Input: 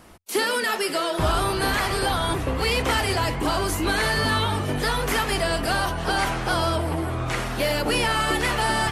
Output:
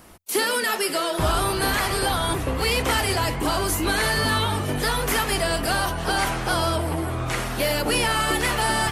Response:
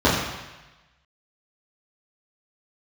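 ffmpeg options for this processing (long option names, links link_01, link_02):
-af "highshelf=frequency=9500:gain=9"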